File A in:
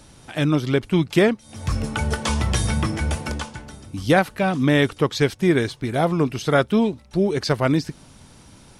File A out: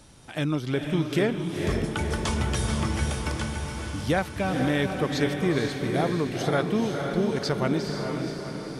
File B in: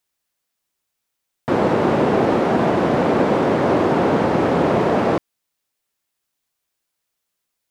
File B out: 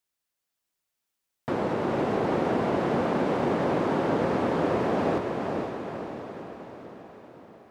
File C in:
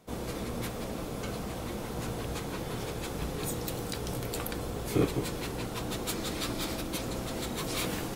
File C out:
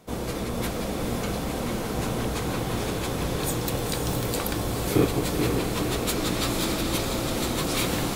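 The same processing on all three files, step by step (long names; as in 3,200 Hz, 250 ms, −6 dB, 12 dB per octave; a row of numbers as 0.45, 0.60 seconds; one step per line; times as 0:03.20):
downward compressor 1.5 to 1, threshold −23 dBFS
on a send: feedback delay with all-pass diffusion 482 ms, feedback 57%, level −4 dB
on the sum: loudness normalisation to −27 LKFS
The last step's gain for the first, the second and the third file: −4.0, −7.0, +6.0 decibels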